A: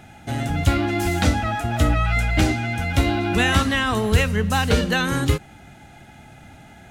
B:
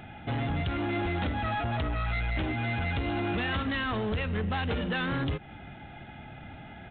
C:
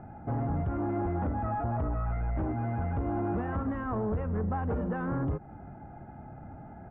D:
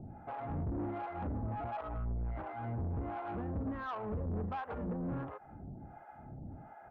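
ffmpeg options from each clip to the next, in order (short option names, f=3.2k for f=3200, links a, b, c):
-af "acompressor=threshold=-22dB:ratio=6,aresample=8000,asoftclip=type=tanh:threshold=-25.5dB,aresample=44100"
-af "lowpass=f=1.2k:w=0.5412,lowpass=f=1.2k:w=1.3066"
-filter_complex "[0:a]acrossover=split=580[a][b];[a]aeval=exprs='val(0)*(1-1/2+1/2*cos(2*PI*1.4*n/s))':c=same[c];[b]aeval=exprs='val(0)*(1-1/2-1/2*cos(2*PI*1.4*n/s))':c=same[d];[c][d]amix=inputs=2:normalize=0,asoftclip=type=tanh:threshold=-34dB,volume=1dB"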